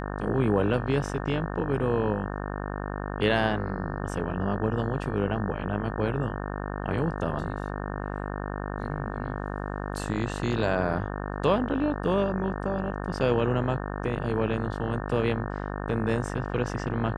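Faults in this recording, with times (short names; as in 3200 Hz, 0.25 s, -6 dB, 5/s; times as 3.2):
buzz 50 Hz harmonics 36 -33 dBFS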